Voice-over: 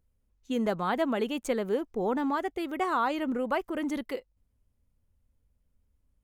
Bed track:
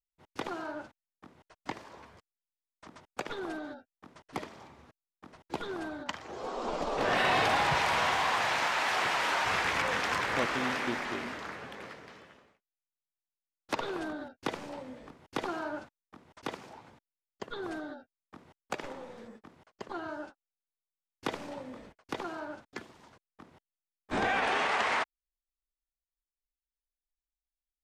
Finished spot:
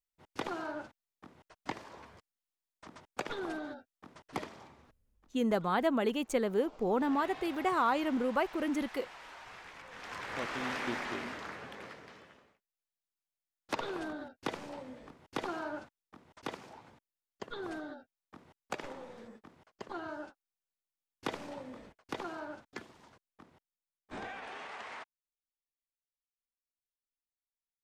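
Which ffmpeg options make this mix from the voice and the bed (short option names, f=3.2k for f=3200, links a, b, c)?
-filter_complex "[0:a]adelay=4850,volume=-1.5dB[a];[1:a]volume=18dB,afade=t=out:st=4.46:d=0.82:silence=0.0944061,afade=t=in:st=9.9:d=1.06:silence=0.11885,afade=t=out:st=23.11:d=1.25:silence=0.211349[b];[a][b]amix=inputs=2:normalize=0"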